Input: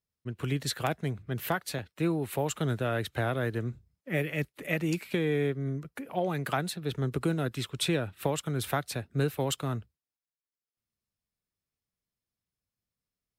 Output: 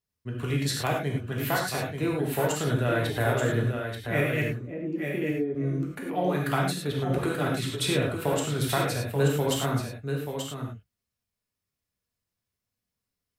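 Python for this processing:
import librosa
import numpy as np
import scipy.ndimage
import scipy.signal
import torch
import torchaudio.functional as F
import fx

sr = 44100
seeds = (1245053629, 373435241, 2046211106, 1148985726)

y = fx.bandpass_q(x, sr, hz=290.0, q=1.8, at=(4.48, 5.55))
y = y + 10.0 ** (-6.5 / 20.0) * np.pad(y, (int(883 * sr / 1000.0), 0))[:len(y)]
y = fx.rev_gated(y, sr, seeds[0], gate_ms=130, shape='flat', drr_db=-2.0)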